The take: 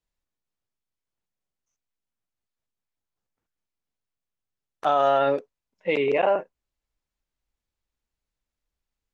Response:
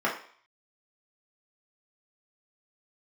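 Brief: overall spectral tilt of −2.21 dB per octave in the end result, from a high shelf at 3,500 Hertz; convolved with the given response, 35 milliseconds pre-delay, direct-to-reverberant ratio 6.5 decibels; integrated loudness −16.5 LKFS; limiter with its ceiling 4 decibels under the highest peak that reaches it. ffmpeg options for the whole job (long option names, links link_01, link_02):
-filter_complex "[0:a]highshelf=frequency=3500:gain=5.5,alimiter=limit=-14dB:level=0:latency=1,asplit=2[link_01][link_02];[1:a]atrim=start_sample=2205,adelay=35[link_03];[link_02][link_03]afir=irnorm=-1:irlink=0,volume=-19dB[link_04];[link_01][link_04]amix=inputs=2:normalize=0,volume=7.5dB"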